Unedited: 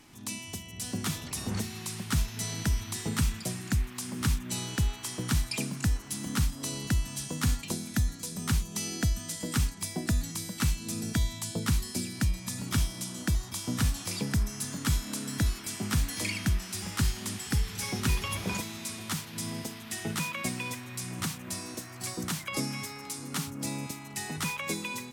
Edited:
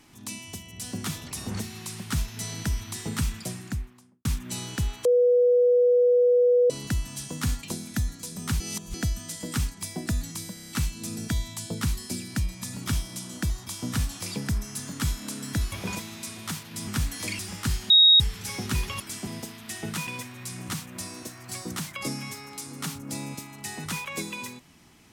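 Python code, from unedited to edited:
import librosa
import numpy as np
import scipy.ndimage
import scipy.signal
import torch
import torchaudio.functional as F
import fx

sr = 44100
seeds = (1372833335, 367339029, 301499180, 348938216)

y = fx.studio_fade_out(x, sr, start_s=3.44, length_s=0.81)
y = fx.edit(y, sr, fx.bleep(start_s=5.05, length_s=1.65, hz=490.0, db=-16.0),
    fx.reverse_span(start_s=8.6, length_s=0.34),
    fx.stutter(start_s=10.54, slice_s=0.03, count=6),
    fx.swap(start_s=15.57, length_s=0.27, other_s=18.34, other_length_s=1.15),
    fx.cut(start_s=16.36, length_s=0.37),
    fx.bleep(start_s=17.24, length_s=0.3, hz=3770.0, db=-12.0),
    fx.cut(start_s=20.29, length_s=0.3), tone=tone)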